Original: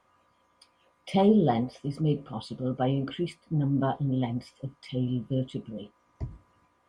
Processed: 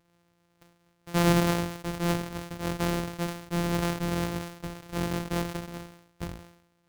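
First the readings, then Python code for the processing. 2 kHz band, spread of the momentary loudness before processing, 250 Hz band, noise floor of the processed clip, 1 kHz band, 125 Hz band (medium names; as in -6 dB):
+10.5 dB, 19 LU, -2.5 dB, -70 dBFS, 0.0 dB, -1.5 dB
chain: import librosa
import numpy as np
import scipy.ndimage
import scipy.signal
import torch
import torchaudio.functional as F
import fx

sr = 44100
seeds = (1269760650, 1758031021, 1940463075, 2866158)

y = np.r_[np.sort(x[:len(x) // 256 * 256].reshape(-1, 256), axis=1).ravel(), x[len(x) // 256 * 256:]]
y = fx.sustainer(y, sr, db_per_s=85.0)
y = F.gain(torch.from_numpy(y), -2.0).numpy()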